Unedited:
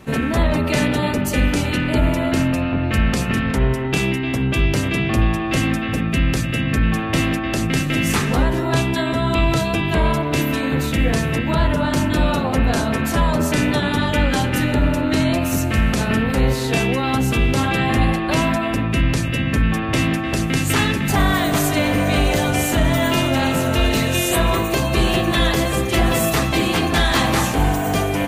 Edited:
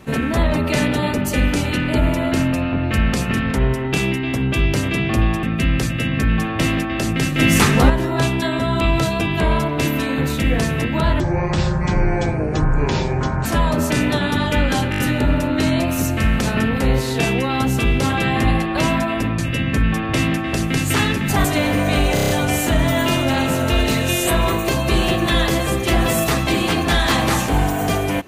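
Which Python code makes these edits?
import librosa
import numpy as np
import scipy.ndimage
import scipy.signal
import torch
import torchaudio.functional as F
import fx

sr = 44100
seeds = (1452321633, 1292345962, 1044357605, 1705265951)

y = fx.edit(x, sr, fx.cut(start_s=5.43, length_s=0.54),
    fx.clip_gain(start_s=7.93, length_s=0.51, db=5.0),
    fx.speed_span(start_s=11.74, length_s=1.33, speed=0.59),
    fx.stutter(start_s=14.52, slice_s=0.02, count=5),
    fx.cut(start_s=18.92, length_s=0.26),
    fx.cut(start_s=21.24, length_s=0.41),
    fx.stutter(start_s=22.35, slice_s=0.03, count=6), tone=tone)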